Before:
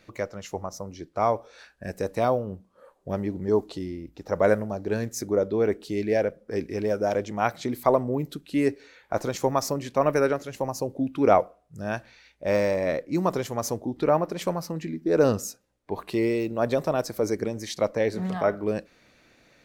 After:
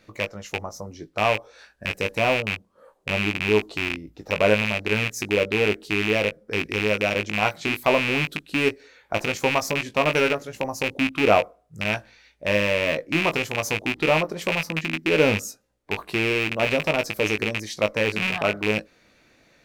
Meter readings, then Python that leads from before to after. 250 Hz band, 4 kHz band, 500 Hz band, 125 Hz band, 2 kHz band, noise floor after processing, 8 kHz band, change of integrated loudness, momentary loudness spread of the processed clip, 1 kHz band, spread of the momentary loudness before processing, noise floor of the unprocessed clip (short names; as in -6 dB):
+0.5 dB, +13.5 dB, +0.5 dB, +2.0 dB, +13.5 dB, -62 dBFS, +2.0 dB, +3.0 dB, 10 LU, +1.0 dB, 12 LU, -63 dBFS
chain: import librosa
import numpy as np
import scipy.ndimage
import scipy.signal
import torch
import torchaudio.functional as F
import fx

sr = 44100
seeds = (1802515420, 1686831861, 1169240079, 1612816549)

y = fx.rattle_buzz(x, sr, strikes_db=-31.0, level_db=-12.0)
y = fx.doubler(y, sr, ms=19.0, db=-8.0)